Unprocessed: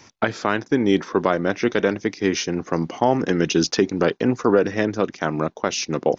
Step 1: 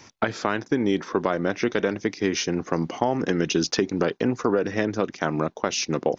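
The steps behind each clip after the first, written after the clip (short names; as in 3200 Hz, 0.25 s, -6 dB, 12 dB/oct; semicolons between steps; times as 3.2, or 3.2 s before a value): compressor 3:1, threshold -19 dBFS, peak gain reduction 6.5 dB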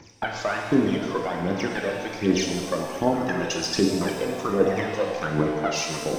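phaser 1.3 Hz, delay 2 ms, feedback 77%; shimmer reverb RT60 1.7 s, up +7 st, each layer -8 dB, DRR 1 dB; gain -7 dB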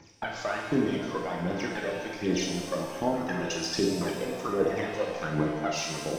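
reverb, pre-delay 3 ms, DRR 4.5 dB; gain -6 dB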